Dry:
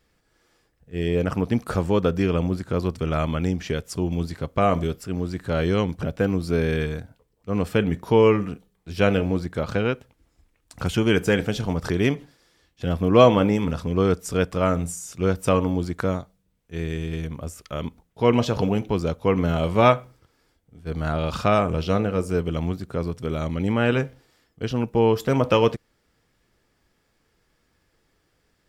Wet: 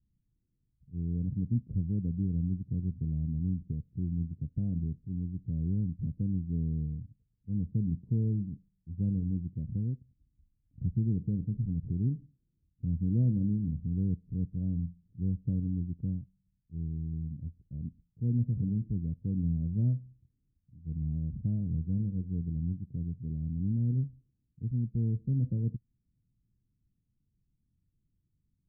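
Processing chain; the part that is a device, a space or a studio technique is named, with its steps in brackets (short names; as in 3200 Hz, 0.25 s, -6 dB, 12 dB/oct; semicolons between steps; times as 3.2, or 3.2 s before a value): the neighbour's flat through the wall (LPF 220 Hz 24 dB/oct; bell 120 Hz +5 dB 0.58 oct); gain -6.5 dB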